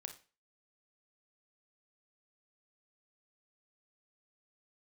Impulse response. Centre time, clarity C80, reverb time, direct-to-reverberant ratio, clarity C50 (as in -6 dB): 12 ms, 17.0 dB, 0.35 s, 5.5 dB, 10.5 dB